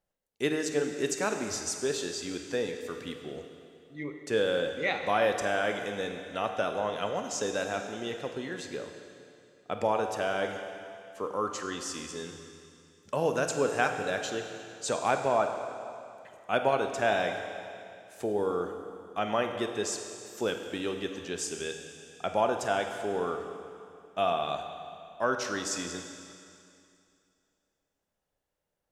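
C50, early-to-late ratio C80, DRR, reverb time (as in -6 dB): 6.0 dB, 7.0 dB, 5.0 dB, 2.5 s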